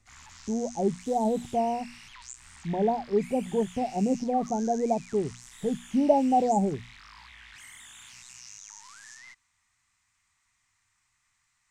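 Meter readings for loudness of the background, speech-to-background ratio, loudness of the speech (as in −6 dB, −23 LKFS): −46.5 LKFS, 19.0 dB, −27.5 LKFS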